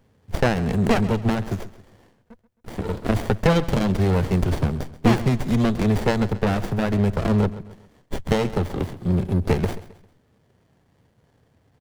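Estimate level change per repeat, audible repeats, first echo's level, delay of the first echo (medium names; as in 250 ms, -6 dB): -8.0 dB, 3, -16.5 dB, 133 ms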